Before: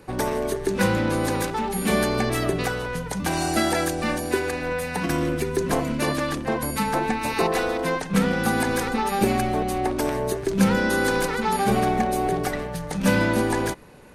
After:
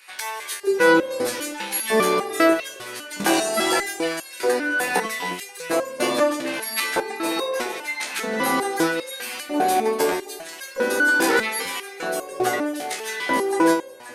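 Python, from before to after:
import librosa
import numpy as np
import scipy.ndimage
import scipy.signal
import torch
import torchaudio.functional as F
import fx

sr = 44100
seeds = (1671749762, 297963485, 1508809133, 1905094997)

p1 = fx.over_compress(x, sr, threshold_db=-24.0, ratio=-1.0)
p2 = x + (p1 * 10.0 ** (0.5 / 20.0))
p3 = fx.filter_lfo_highpass(p2, sr, shape='square', hz=0.79, low_hz=370.0, high_hz=2200.0, q=1.2)
p4 = fx.echo_alternate(p3, sr, ms=266, hz=920.0, feedback_pct=54, wet_db=-9)
p5 = fx.resonator_held(p4, sr, hz=5.0, low_hz=67.0, high_hz=540.0)
y = p5 * 10.0 ** (8.5 / 20.0)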